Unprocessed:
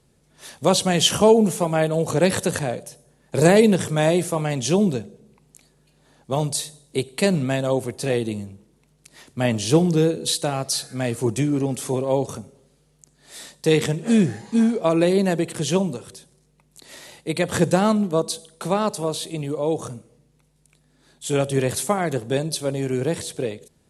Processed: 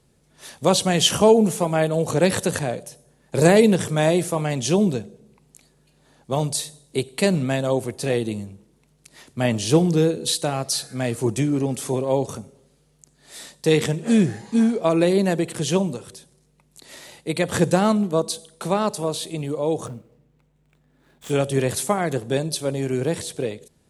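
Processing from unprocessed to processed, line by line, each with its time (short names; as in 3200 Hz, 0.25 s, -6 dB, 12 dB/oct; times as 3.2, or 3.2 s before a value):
19.86–21.3 median filter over 9 samples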